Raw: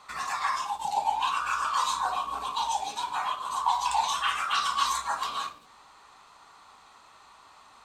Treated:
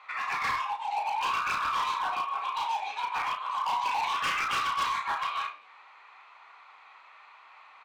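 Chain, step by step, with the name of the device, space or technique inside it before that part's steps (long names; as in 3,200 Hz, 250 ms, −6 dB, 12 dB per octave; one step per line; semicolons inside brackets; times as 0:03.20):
megaphone (band-pass filter 690–2,600 Hz; parametric band 2,300 Hz +12 dB 0.53 octaves; hard clipping −26.5 dBFS, distortion −10 dB; double-tracking delay 33 ms −8 dB)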